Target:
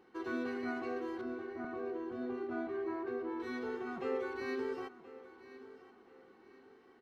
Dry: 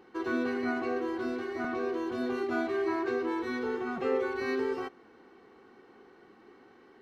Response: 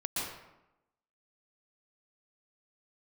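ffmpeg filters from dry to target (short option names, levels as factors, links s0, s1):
-filter_complex "[0:a]asettb=1/sr,asplit=3[s0][s1][s2];[s0]atrim=end=1.214[s3];[s1]atrim=start=1.21:end=3.4,asetpts=PTS-STARTPTS,afade=t=in:d=0.004:c=qsin,afade=t=out:st=2.186:d=0.004:c=qsin,lowpass=f=1100:p=1[s4];[s2]atrim=start=3.396[s5];[s3][s4]acrossfade=d=0.004:c1=hsin:c2=qsin[s6];[s6][s5]acrossfade=d=0.004:c1=qsin:c2=hsin,asplit=2[s7][s8];[s8]aecho=0:1:1026|2052|3078:0.15|0.0539|0.0194[s9];[s7][s9]amix=inputs=2:normalize=0,volume=0.447"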